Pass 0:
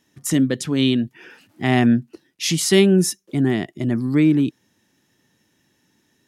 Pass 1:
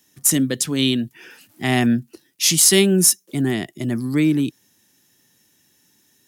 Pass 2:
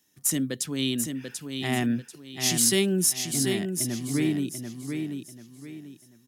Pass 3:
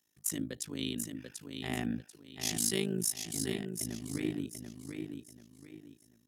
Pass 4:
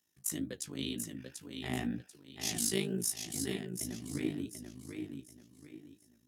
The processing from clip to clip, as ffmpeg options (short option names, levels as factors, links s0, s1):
-filter_complex "[0:a]aemphasis=mode=production:type=75kf,acrossover=split=110|5000[s0][s1][s2];[s2]acrusher=bits=5:mode=log:mix=0:aa=0.000001[s3];[s0][s1][s3]amix=inputs=3:normalize=0,volume=0.794"
-af "aecho=1:1:739|1478|2217|2956:0.501|0.16|0.0513|0.0164,volume=0.376"
-af "bandreject=f=150.4:t=h:w=4,bandreject=f=300.8:t=h:w=4,bandreject=f=451.2:t=h:w=4,bandreject=f=601.6:t=h:w=4,bandreject=f=752:t=h:w=4,tremolo=f=53:d=0.919,volume=0.531"
-af "flanger=delay=9.1:depth=7.1:regen=37:speed=2:shape=triangular,volume=1.33"